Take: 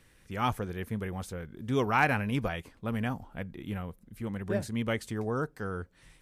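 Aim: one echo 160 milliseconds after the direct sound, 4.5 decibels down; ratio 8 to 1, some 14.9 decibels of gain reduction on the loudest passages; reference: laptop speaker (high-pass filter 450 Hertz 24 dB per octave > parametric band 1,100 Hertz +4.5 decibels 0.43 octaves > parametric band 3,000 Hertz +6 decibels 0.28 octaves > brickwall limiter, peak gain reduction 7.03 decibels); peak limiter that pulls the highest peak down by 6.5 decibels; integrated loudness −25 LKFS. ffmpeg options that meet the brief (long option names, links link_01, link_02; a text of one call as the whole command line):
ffmpeg -i in.wav -af "acompressor=threshold=-36dB:ratio=8,alimiter=level_in=8dB:limit=-24dB:level=0:latency=1,volume=-8dB,highpass=frequency=450:width=0.5412,highpass=frequency=450:width=1.3066,equalizer=frequency=1100:width_type=o:width=0.43:gain=4.5,equalizer=frequency=3000:width_type=o:width=0.28:gain=6,aecho=1:1:160:0.596,volume=22dB,alimiter=limit=-13dB:level=0:latency=1" out.wav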